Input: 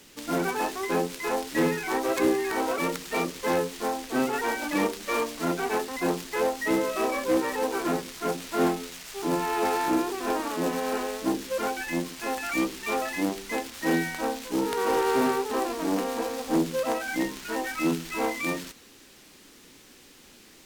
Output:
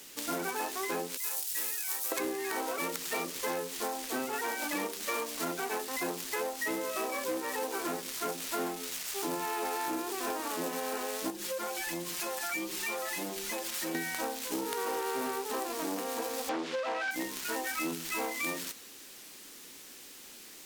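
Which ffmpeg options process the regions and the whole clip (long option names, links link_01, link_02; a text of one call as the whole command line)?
ffmpeg -i in.wav -filter_complex "[0:a]asettb=1/sr,asplit=3[link_01][link_02][link_03];[link_01]atrim=end=1.174[link_04];[link_02]atrim=start=1.17:end=2.12,asetpts=PTS-STARTPTS,afade=type=in:duration=0.004:curve=qsin,afade=type=out:start_time=0.946:duration=0.004:curve=qsin,aderivative,bandreject=frequency=2100:width=28[link_05];[link_03]atrim=start=2.116[link_06];[link_04][link_05]acrossfade=duration=0.004:curve1=hsin:curve2=qsin[link_07];[link_07][link_06]acrossfade=duration=0.004:curve1=qsin:curve2=hsin,asettb=1/sr,asplit=3[link_08][link_09][link_10];[link_08]atrim=end=11.304[link_11];[link_09]atrim=start=11.3:end=13.95,asetpts=PTS-STARTPTS,afade=type=in:duration=0.004:curve=qsin,afade=type=out:start_time=2.646:duration=0.004:curve=qsin,aecho=1:1:5.6:0.88,atrim=end_sample=116865,acompressor=threshold=-34dB:ratio=2.5:attack=3.2:release=140:knee=1:detection=peak[link_12];[link_10]atrim=start=13.946[link_13];[link_11][link_12]acrossfade=duration=0.004:curve1=hsin:curve2=qsin[link_14];[link_14][link_13]acrossfade=duration=0.004:curve1=qsin:curve2=hsin,asettb=1/sr,asplit=3[link_15][link_16][link_17];[link_15]atrim=end=16.494[link_18];[link_16]atrim=start=16.49:end=17.11,asetpts=PTS-STARTPTS,afade=type=in:duration=0.004:curve=qsin,afade=type=out:start_time=0.616:duration=0.004:curve=qsin,asplit=2[link_19][link_20];[link_20]highpass=frequency=720:poles=1,volume=19dB,asoftclip=type=tanh:threshold=-14.5dB[link_21];[link_19][link_21]amix=inputs=2:normalize=0,lowpass=frequency=3100:poles=1,volume=-6dB,highpass=200,lowpass=4600[link_22];[link_17]atrim=start=17.106[link_23];[link_18][link_22]acrossfade=duration=0.004:curve1=hsin:curve2=qsin[link_24];[link_24][link_23]acrossfade=duration=0.004:curve1=qsin:curve2=hsin,lowshelf=frequency=210:gain=-11,acompressor=threshold=-32dB:ratio=6,highshelf=frequency=7200:gain=9.5" out.wav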